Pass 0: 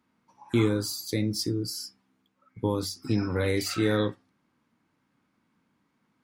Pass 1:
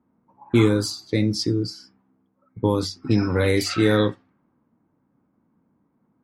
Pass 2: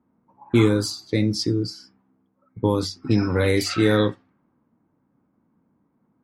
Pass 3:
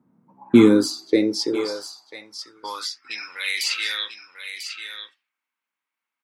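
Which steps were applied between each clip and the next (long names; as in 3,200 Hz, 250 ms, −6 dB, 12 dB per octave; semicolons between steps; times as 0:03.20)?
low-pass that shuts in the quiet parts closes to 770 Hz, open at −22 dBFS; level +6.5 dB
no processing that can be heard
single-tap delay 994 ms −9 dB; high-pass filter sweep 140 Hz → 2,600 Hz, 0:00.10–0:03.37; level +1 dB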